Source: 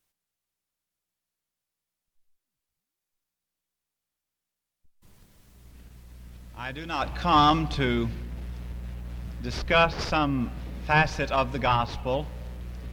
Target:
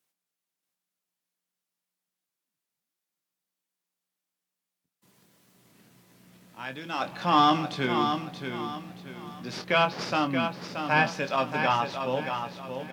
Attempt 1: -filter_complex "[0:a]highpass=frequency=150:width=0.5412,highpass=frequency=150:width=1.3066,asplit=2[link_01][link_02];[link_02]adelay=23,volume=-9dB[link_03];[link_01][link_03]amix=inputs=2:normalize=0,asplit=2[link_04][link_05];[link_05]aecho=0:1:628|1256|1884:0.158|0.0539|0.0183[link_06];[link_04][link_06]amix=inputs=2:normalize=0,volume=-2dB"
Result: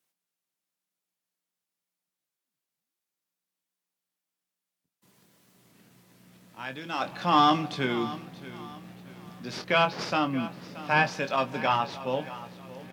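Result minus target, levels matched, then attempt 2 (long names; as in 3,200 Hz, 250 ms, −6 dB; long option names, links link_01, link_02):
echo-to-direct −9 dB
-filter_complex "[0:a]highpass=frequency=150:width=0.5412,highpass=frequency=150:width=1.3066,asplit=2[link_01][link_02];[link_02]adelay=23,volume=-9dB[link_03];[link_01][link_03]amix=inputs=2:normalize=0,asplit=2[link_04][link_05];[link_05]aecho=0:1:628|1256|1884|2512:0.447|0.152|0.0516|0.0176[link_06];[link_04][link_06]amix=inputs=2:normalize=0,volume=-2dB"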